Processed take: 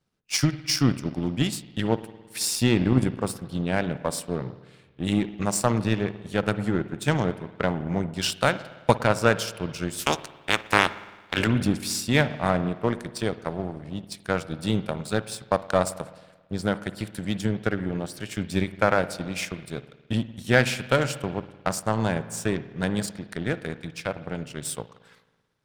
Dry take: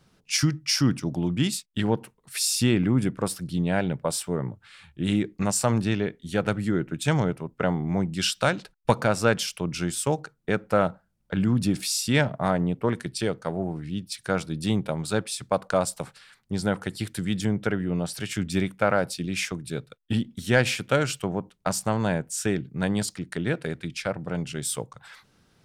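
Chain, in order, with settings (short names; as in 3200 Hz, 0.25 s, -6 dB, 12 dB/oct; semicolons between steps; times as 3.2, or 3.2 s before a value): 9.98–11.46 spectral limiter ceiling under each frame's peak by 28 dB; spring tank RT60 1.8 s, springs 54 ms, chirp 35 ms, DRR 9.5 dB; power-law curve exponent 1.4; gain +4.5 dB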